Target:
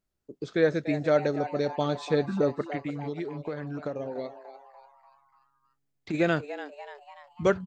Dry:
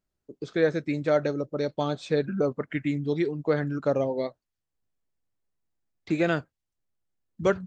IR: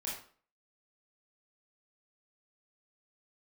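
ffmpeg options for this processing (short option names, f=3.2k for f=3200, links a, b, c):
-filter_complex "[0:a]asplit=3[a][b][c];[a]afade=t=out:st=2.61:d=0.02[d];[b]acompressor=threshold=-31dB:ratio=6,afade=t=in:st=2.61:d=0.02,afade=t=out:st=6.13:d=0.02[e];[c]afade=t=in:st=6.13:d=0.02[f];[d][e][f]amix=inputs=3:normalize=0,asplit=6[g][h][i][j][k][l];[h]adelay=292,afreqshift=140,volume=-13dB[m];[i]adelay=584,afreqshift=280,volume=-19dB[n];[j]adelay=876,afreqshift=420,volume=-25dB[o];[k]adelay=1168,afreqshift=560,volume=-31.1dB[p];[l]adelay=1460,afreqshift=700,volume=-37.1dB[q];[g][m][n][o][p][q]amix=inputs=6:normalize=0"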